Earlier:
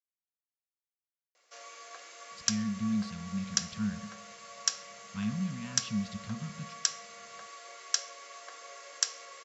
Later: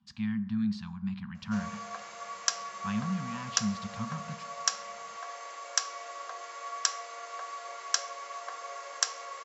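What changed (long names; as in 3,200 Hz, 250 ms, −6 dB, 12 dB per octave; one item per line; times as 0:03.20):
speech: entry −2.30 s
master: add parametric band 920 Hz +11.5 dB 1.4 octaves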